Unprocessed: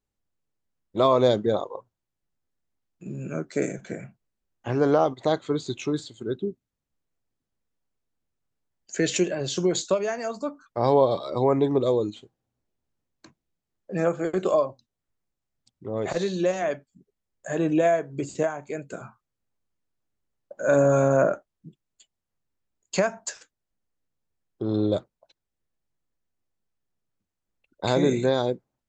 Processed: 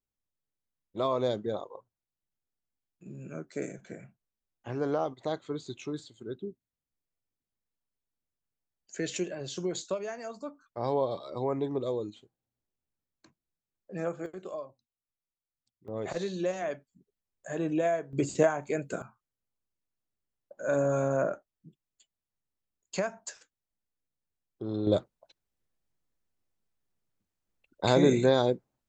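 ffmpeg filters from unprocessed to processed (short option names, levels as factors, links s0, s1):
-af "asetnsamples=n=441:p=0,asendcmd='14.26 volume volume -17dB;15.88 volume volume -7dB;18.13 volume volume 1.5dB;19.02 volume volume -8dB;24.87 volume volume -0.5dB',volume=0.335"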